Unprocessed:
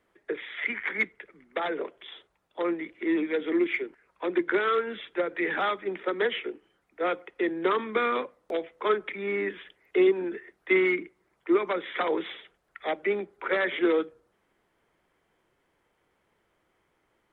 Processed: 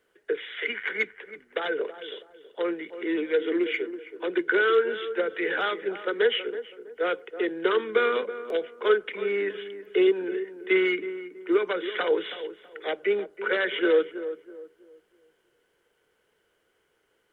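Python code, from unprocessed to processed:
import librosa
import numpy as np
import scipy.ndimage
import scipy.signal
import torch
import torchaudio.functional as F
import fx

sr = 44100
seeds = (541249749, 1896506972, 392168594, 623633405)

p1 = fx.high_shelf(x, sr, hz=2500.0, db=11.5)
p2 = fx.small_body(p1, sr, hz=(450.0, 1500.0, 2900.0), ring_ms=25, db=12)
p3 = p2 + fx.echo_filtered(p2, sr, ms=325, feedback_pct=33, hz=1100.0, wet_db=-11, dry=0)
y = F.gain(torch.from_numpy(p3), -6.0).numpy()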